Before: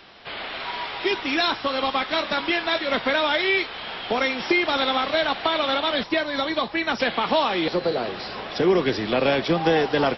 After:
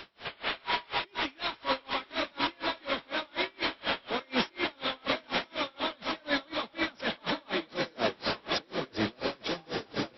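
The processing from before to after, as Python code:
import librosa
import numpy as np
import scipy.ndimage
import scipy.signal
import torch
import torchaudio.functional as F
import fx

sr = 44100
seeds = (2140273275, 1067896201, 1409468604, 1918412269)

p1 = fx.notch(x, sr, hz=760.0, q=12.0)
p2 = fx.over_compress(p1, sr, threshold_db=-29.0, ratio=-1.0)
p3 = p2 + fx.echo_diffused(p2, sr, ms=999, feedback_pct=59, wet_db=-4.5, dry=0)
y = p3 * 10.0 ** (-32 * (0.5 - 0.5 * np.cos(2.0 * np.pi * 4.1 * np.arange(len(p3)) / sr)) / 20.0)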